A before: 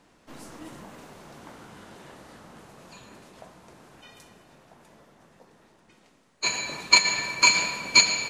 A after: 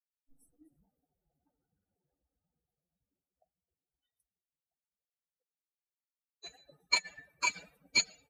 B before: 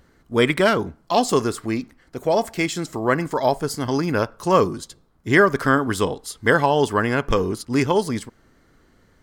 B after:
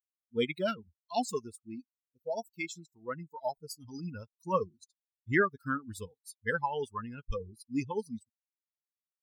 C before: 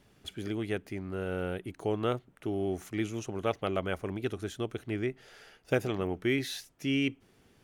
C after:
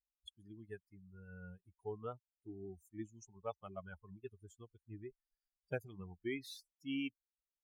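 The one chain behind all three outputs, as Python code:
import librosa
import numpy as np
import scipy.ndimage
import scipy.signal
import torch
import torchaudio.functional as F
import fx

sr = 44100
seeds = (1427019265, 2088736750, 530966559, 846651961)

y = fx.bin_expand(x, sr, power=3.0)
y = y * librosa.db_to_amplitude(-8.0)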